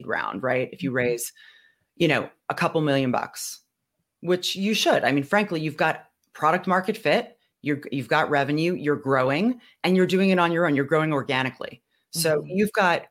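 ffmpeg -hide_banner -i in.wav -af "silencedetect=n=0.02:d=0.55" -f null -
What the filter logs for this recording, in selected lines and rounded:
silence_start: 1.29
silence_end: 2.00 | silence_duration: 0.72
silence_start: 3.55
silence_end: 4.23 | silence_duration: 0.68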